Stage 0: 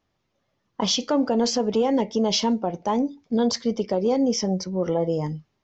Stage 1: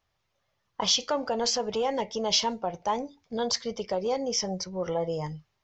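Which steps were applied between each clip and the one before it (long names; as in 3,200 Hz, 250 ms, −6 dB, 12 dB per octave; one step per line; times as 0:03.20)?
parametric band 260 Hz −14.5 dB 1.4 octaves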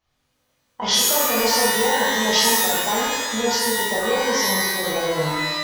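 reverb with rising layers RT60 1.1 s, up +12 semitones, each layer −2 dB, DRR −7 dB
level −2 dB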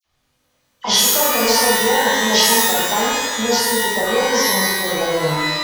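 all-pass dispersion lows, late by 54 ms, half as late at 2,300 Hz
level +3.5 dB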